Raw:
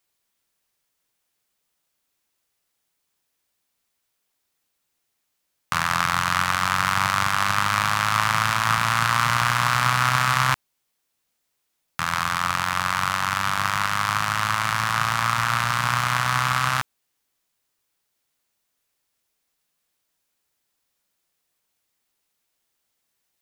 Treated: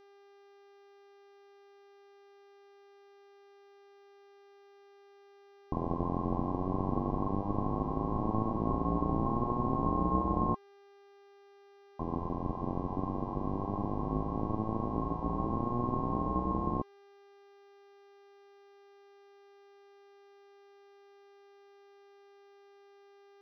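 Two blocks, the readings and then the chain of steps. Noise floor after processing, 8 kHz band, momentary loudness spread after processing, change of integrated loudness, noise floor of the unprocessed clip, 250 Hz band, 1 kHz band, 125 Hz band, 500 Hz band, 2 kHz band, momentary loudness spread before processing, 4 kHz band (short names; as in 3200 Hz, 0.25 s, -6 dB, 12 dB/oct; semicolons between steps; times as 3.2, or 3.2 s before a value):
-59 dBFS, under -40 dB, 5 LU, -12.0 dB, -76 dBFS, +5.0 dB, -13.5 dB, -6.5 dB, +2.0 dB, under -40 dB, 4 LU, under -35 dB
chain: ring modulator 1200 Hz; rippled Chebyshev low-pass 1100 Hz, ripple 6 dB; buzz 400 Hz, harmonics 15, -59 dBFS -8 dB/oct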